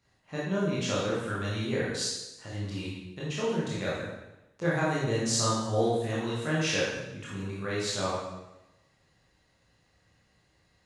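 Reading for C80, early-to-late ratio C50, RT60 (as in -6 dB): 2.5 dB, -0.5 dB, 0.95 s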